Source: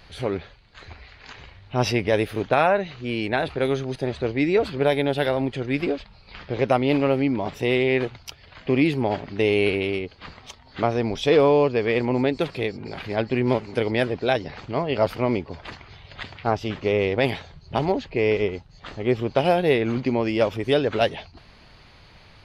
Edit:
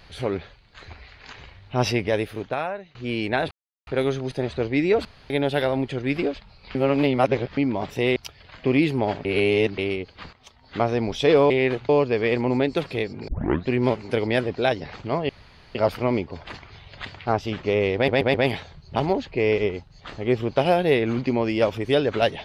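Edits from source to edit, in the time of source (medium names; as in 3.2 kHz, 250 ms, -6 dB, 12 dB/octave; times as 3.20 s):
1.87–2.95 s: fade out, to -21.5 dB
3.51 s: insert silence 0.36 s
4.69–4.94 s: room tone
6.39–7.21 s: reverse
7.80–8.19 s: move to 11.53 s
9.28–9.81 s: reverse
10.36–10.86 s: fade in, from -14.5 dB
12.92 s: tape start 0.40 s
14.93 s: insert room tone 0.46 s
17.13 s: stutter 0.13 s, 4 plays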